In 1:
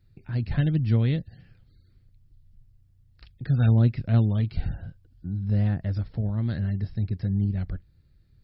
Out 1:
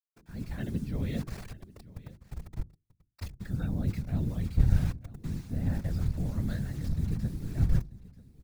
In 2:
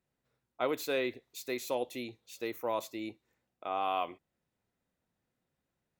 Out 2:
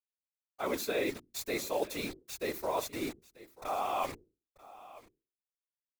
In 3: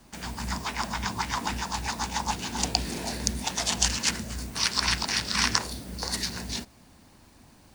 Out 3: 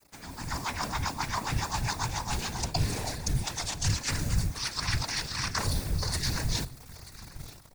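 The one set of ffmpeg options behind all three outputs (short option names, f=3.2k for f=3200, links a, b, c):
-filter_complex "[0:a]acrusher=bits=7:mix=0:aa=0.000001,areverse,acompressor=threshold=-34dB:ratio=8,areverse,bandreject=f=50:t=h:w=6,bandreject=f=100:t=h:w=6,bandreject=f=150:t=h:w=6,bandreject=f=200:t=h:w=6,bandreject=f=250:t=h:w=6,bandreject=f=300:t=h:w=6,bandreject=f=350:t=h:w=6,dynaudnorm=f=280:g=3:m=12dB,asplit=2[a][b];[b]aecho=0:1:938:0.112[c];[a][c]amix=inputs=2:normalize=0,asubboost=boost=8:cutoff=60,afftfilt=real='hypot(re,im)*cos(2*PI*random(0))':imag='hypot(re,im)*sin(2*PI*random(1))':win_size=512:overlap=0.75,equalizer=f=3k:w=5.7:g=-6"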